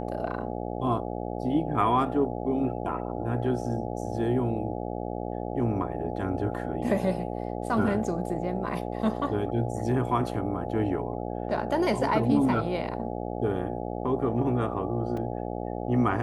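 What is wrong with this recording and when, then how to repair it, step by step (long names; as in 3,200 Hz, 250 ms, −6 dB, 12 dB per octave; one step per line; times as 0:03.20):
mains buzz 60 Hz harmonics 14 −33 dBFS
0:15.17: drop-out 3.6 ms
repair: hum removal 60 Hz, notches 14
repair the gap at 0:15.17, 3.6 ms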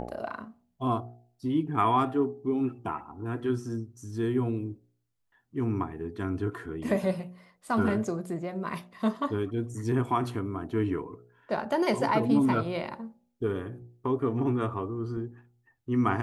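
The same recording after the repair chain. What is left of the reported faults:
none of them is left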